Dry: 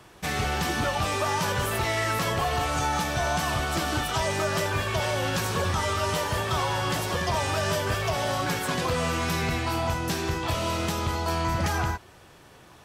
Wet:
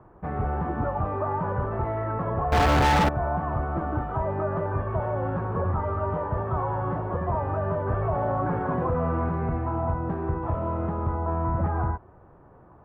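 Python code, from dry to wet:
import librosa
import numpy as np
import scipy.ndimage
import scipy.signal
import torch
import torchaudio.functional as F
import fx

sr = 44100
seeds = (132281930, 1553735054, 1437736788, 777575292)

y = scipy.signal.sosfilt(scipy.signal.butter(4, 1200.0, 'lowpass', fs=sr, output='sos'), x)
y = fx.low_shelf(y, sr, hz=65.0, db=6.5)
y = fx.leveller(y, sr, passes=5, at=(2.52, 3.09))
y = fx.env_flatten(y, sr, amount_pct=50, at=(7.88, 9.29))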